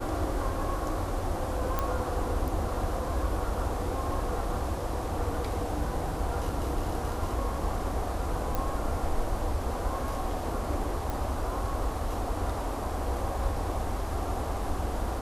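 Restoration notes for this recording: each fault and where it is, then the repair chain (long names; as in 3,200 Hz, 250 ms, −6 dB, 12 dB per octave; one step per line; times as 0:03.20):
0:01.79: click −14 dBFS
0:08.55: click
0:11.10: click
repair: click removal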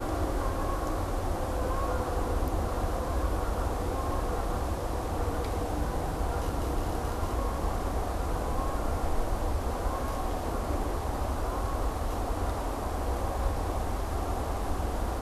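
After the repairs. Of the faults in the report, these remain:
0:08.55: click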